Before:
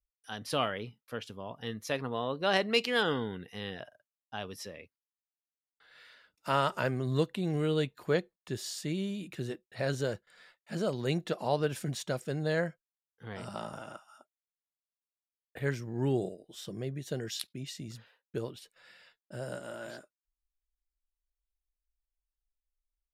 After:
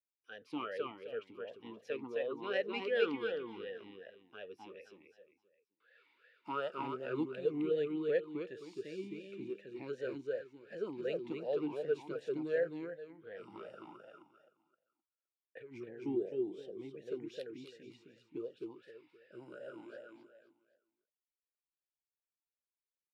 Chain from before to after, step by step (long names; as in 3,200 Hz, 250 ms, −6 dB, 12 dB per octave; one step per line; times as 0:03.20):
0:15.61–0:16.06: compressor whose output falls as the input rises −39 dBFS, ratio −1
on a send: repeating echo 261 ms, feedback 30%, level −3 dB
on the sum: formant filter swept between two vowels e-u 2.7 Hz
level +2.5 dB